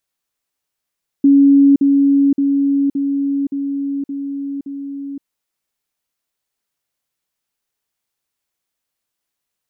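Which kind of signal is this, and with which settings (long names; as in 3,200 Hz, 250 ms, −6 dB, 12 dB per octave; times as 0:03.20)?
level staircase 279 Hz −6 dBFS, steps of −3 dB, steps 7, 0.52 s 0.05 s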